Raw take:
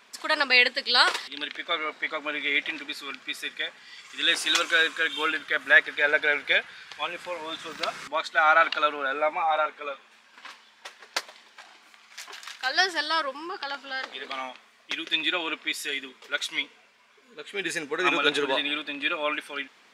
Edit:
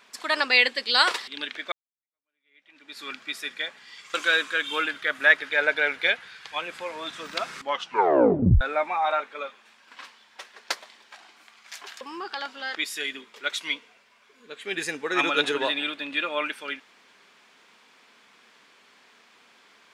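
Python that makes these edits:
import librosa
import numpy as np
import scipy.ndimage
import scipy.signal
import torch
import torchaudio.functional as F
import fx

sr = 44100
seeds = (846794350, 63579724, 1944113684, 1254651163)

y = fx.edit(x, sr, fx.fade_in_span(start_s=1.72, length_s=1.3, curve='exp'),
    fx.cut(start_s=4.14, length_s=0.46),
    fx.tape_stop(start_s=8.08, length_s=0.99),
    fx.cut(start_s=12.47, length_s=0.83),
    fx.cut(start_s=14.04, length_s=1.59), tone=tone)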